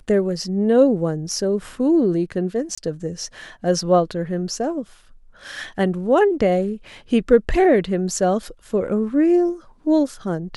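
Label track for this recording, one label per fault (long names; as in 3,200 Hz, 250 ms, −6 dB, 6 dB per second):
2.750000	2.770000	drop-out 25 ms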